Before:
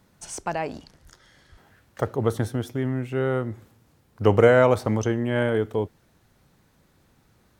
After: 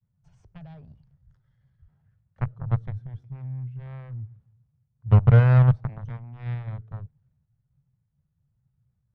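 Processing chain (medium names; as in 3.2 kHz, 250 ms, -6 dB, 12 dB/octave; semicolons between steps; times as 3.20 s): expander -55 dBFS; Chebyshev shaper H 2 -35 dB, 3 -27 dB, 7 -16 dB, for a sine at -2 dBFS; resonant low shelf 200 Hz +13.5 dB, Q 3; tempo 0.83×; tape spacing loss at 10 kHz 32 dB; trim -6.5 dB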